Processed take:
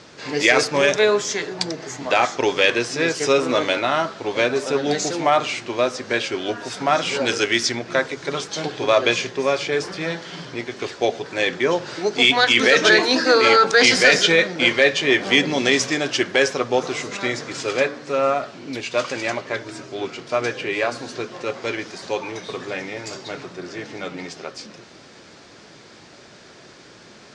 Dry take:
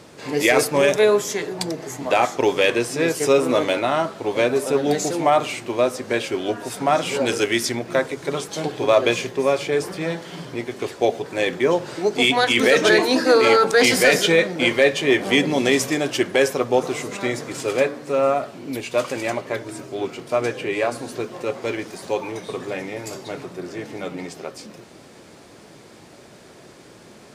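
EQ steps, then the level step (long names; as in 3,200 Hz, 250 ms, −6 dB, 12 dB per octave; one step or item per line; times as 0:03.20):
low-pass filter 6,000 Hz 24 dB per octave
parametric band 1,500 Hz +4.5 dB 0.77 octaves
high-shelf EQ 3,300 Hz +11 dB
−2.0 dB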